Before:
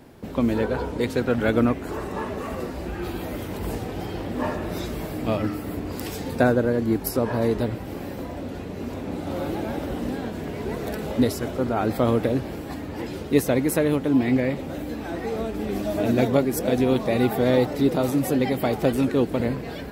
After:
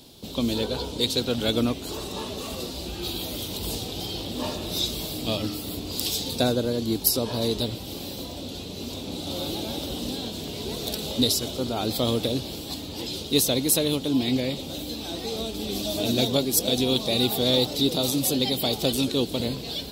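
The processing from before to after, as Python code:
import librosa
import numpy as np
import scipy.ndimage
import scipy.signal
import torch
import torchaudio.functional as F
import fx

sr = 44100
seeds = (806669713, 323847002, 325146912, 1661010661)

p1 = fx.high_shelf_res(x, sr, hz=2600.0, db=12.5, q=3.0)
p2 = np.clip(10.0 ** (12.0 / 20.0) * p1, -1.0, 1.0) / 10.0 ** (12.0 / 20.0)
p3 = p1 + (p2 * librosa.db_to_amplitude(-8.5))
y = p3 * librosa.db_to_amplitude(-6.5)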